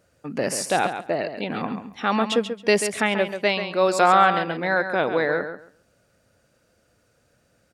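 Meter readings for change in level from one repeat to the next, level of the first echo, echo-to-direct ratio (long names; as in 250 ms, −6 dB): −15.0 dB, −9.0 dB, −9.0 dB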